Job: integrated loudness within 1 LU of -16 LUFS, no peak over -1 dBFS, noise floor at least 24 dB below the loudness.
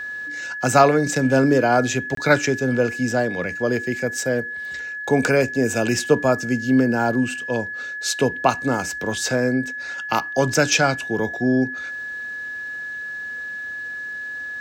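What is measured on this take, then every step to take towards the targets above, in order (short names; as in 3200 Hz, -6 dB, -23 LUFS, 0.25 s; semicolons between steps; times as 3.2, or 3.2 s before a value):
dropouts 1; longest dropout 23 ms; steady tone 1700 Hz; tone level -28 dBFS; loudness -21.5 LUFS; peak -1.5 dBFS; loudness target -16.0 LUFS
-> interpolate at 2.15, 23 ms; notch 1700 Hz, Q 30; gain +5.5 dB; limiter -1 dBFS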